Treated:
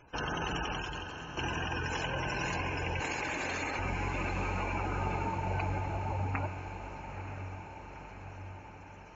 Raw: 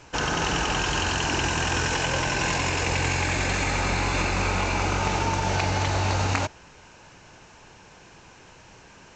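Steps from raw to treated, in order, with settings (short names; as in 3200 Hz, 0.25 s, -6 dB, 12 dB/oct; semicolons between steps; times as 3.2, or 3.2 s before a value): 3–3.79 HPF 230 Hz 24 dB/oct; spectral gate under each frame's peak -15 dB strong; 0.62–1.37 fade out; diffused feedback echo 0.925 s, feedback 63%, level -9 dB; gain -8.5 dB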